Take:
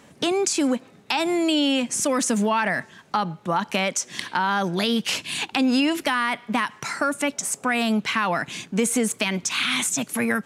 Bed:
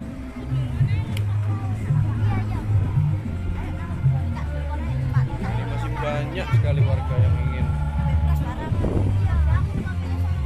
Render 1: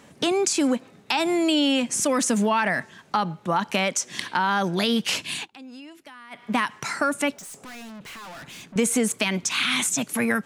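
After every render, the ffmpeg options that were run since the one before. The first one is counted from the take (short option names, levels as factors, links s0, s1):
-filter_complex "[0:a]asettb=1/sr,asplit=3[s0][s1][s2];[s0]atrim=end=7.334[s3];[s1]atrim=start=7.33:end=8.76,asetpts=PTS-STARTPTS,afade=t=in:d=0.004:c=qsin,afade=t=out:st=1.426:d=0.004:c=qsin,aeval=exprs='(tanh(89.1*val(0)+0.05)-tanh(0.05))/89.1':c=same[s4];[s2]atrim=start=8.756[s5];[s3][s4]acrossfade=d=0.004:c1=hsin:c2=qsin[s6];[s6][s5]acrossfade=d=0.004:c1=qsin:c2=hsin,asplit=3[s7][s8][s9];[s7]atrim=end=5.5,asetpts=PTS-STARTPTS,afade=t=out:st=5.31:d=0.19:silence=0.0794328[s10];[s8]atrim=start=5.5:end=6.3,asetpts=PTS-STARTPTS,volume=0.0794[s11];[s9]atrim=start=6.3,asetpts=PTS-STARTPTS,afade=t=in:d=0.19:silence=0.0794328[s12];[s10][s11][s12]concat=n=3:v=0:a=1"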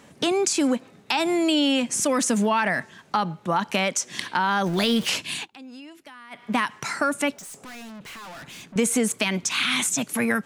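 -filter_complex "[0:a]asettb=1/sr,asplit=3[s0][s1][s2];[s0]atrim=end=4.664[s3];[s1]atrim=start=4.66:end=5.09,asetpts=PTS-STARTPTS,afade=t=in:d=0.004:c=qsin,afade=t=out:st=0.426:d=0.004:c=qsin,aeval=exprs='val(0)+0.5*0.0237*sgn(val(0))':c=same[s4];[s2]atrim=start=5.086[s5];[s3][s4]acrossfade=d=0.004:c1=hsin:c2=qsin[s6];[s6][s5]acrossfade=d=0.004:c1=qsin:c2=hsin"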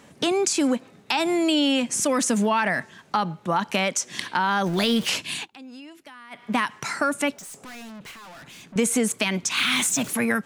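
-filter_complex "[0:a]asettb=1/sr,asplit=3[s0][s1][s2];[s0]atrim=end=8.114[s3];[s1]atrim=start=8.11:end=8.69,asetpts=PTS-STARTPTS,afade=t=in:d=0.004:c=qsin,afade=t=out:st=0.576:d=0.004:c=qsin,acompressor=threshold=0.00708:ratio=6:attack=3.2:release=140:knee=1:detection=peak[s4];[s2]atrim=start=8.686[s5];[s3][s4]acrossfade=d=0.004:c1=hsin:c2=qsin[s6];[s6][s5]acrossfade=d=0.004:c1=qsin:c2=hsin,asettb=1/sr,asplit=3[s7][s8][s9];[s7]atrim=end=9.574[s10];[s8]atrim=start=9.57:end=10.15,asetpts=PTS-STARTPTS,afade=t=in:d=0.004:c=qsin,afade=t=out:st=0.576:d=0.004:c=qsin,aeval=exprs='val(0)+0.5*0.0237*sgn(val(0))':c=same[s11];[s9]atrim=start=10.146[s12];[s10][s11]acrossfade=d=0.004:c1=hsin:c2=qsin[s13];[s13][s12]acrossfade=d=0.004:c1=qsin:c2=hsin"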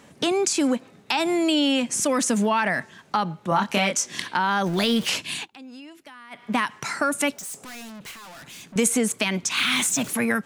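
-filter_complex "[0:a]asettb=1/sr,asplit=3[s0][s1][s2];[s0]atrim=end=3.494[s3];[s1]atrim=start=3.49:end=4.22,asetpts=PTS-STARTPTS,afade=t=in:d=0.004:c=qsin,afade=t=out:st=0.726:d=0.004:c=qsin,asplit=2[s4][s5];[s5]adelay=25,volume=0.668[s6];[s4][s6]amix=inputs=2:normalize=0,atrim=end_sample=32193[s7];[s2]atrim=start=4.216[s8];[s3][s7]acrossfade=d=0.004:c1=hsin:c2=qsin[s9];[s9][s8]acrossfade=d=0.004:c1=qsin:c2=hsin,asettb=1/sr,asplit=3[s10][s11][s12];[s10]atrim=end=7.124[s13];[s11]atrim=start=7.12:end=8.88,asetpts=PTS-STARTPTS,afade=t=in:d=0.004:c=qsin,afade=t=out:st=1.756:d=0.004:c=qsin,highshelf=f=4700:g=7[s14];[s12]atrim=start=8.876[s15];[s13][s14]acrossfade=d=0.004:c1=hsin:c2=qsin[s16];[s16][s15]acrossfade=d=0.004:c1=qsin:c2=hsin"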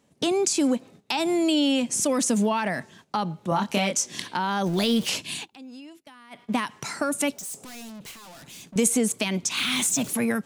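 -af "agate=range=0.224:threshold=0.00447:ratio=16:detection=peak,equalizer=f=1600:t=o:w=1.6:g=-7"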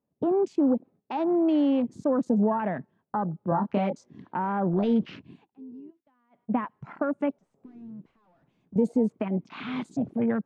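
-af "afwtdn=0.0282,lowpass=1100"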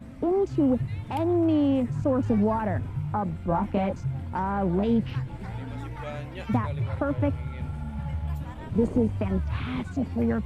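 -filter_complex "[1:a]volume=0.299[s0];[0:a][s0]amix=inputs=2:normalize=0"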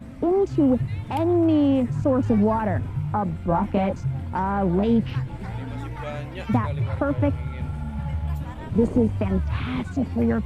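-af "volume=1.5"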